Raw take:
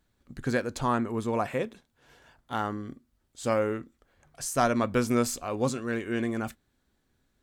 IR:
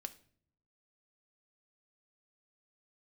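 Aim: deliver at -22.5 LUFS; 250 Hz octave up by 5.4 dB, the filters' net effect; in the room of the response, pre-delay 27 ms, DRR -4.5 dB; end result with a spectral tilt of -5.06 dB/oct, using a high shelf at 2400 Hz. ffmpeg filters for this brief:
-filter_complex "[0:a]equalizer=f=250:t=o:g=6,highshelf=f=2.4k:g=4.5,asplit=2[a][b];[1:a]atrim=start_sample=2205,adelay=27[c];[b][c]afir=irnorm=-1:irlink=0,volume=8dB[d];[a][d]amix=inputs=2:normalize=0,volume=-2dB"

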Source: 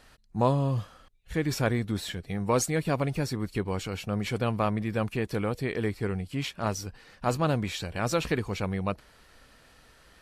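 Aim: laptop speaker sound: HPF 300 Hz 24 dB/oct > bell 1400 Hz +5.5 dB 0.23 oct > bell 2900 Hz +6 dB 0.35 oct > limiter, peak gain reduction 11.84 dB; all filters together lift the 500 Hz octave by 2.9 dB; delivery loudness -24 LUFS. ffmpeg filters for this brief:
-af "highpass=f=300:w=0.5412,highpass=f=300:w=1.3066,equalizer=f=500:t=o:g=3.5,equalizer=f=1.4k:t=o:w=0.23:g=5.5,equalizer=f=2.9k:t=o:w=0.35:g=6,volume=10dB,alimiter=limit=-11.5dB:level=0:latency=1"

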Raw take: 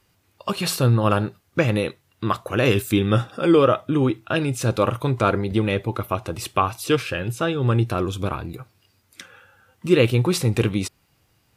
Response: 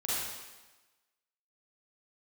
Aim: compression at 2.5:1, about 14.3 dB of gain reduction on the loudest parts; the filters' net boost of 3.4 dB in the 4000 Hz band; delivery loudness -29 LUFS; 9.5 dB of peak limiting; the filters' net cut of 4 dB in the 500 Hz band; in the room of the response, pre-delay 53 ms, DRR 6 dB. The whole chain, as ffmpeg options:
-filter_complex "[0:a]equalizer=f=500:t=o:g=-5,equalizer=f=4k:t=o:g=4.5,acompressor=threshold=-36dB:ratio=2.5,alimiter=level_in=1dB:limit=-24dB:level=0:latency=1,volume=-1dB,asplit=2[a][b];[1:a]atrim=start_sample=2205,adelay=53[c];[b][c]afir=irnorm=-1:irlink=0,volume=-12.5dB[d];[a][d]amix=inputs=2:normalize=0,volume=6.5dB"

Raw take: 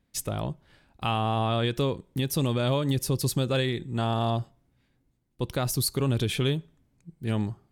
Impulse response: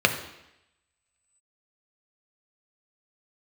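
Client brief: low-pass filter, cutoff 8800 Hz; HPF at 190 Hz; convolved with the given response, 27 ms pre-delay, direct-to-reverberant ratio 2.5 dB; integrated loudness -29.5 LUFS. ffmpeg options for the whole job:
-filter_complex "[0:a]highpass=190,lowpass=8.8k,asplit=2[a][b];[1:a]atrim=start_sample=2205,adelay=27[c];[b][c]afir=irnorm=-1:irlink=0,volume=-20dB[d];[a][d]amix=inputs=2:normalize=0,volume=-1dB"

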